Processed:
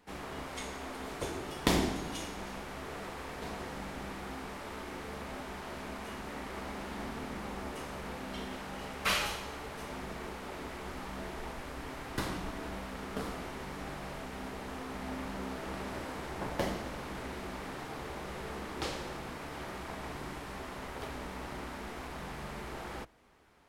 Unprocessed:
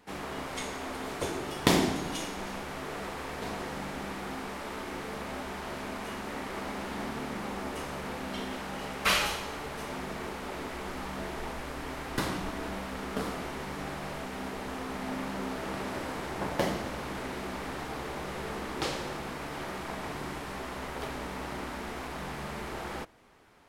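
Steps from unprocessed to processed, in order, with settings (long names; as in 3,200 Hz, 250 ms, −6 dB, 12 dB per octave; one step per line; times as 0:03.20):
sub-octave generator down 2 octaves, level −5 dB
level −4.5 dB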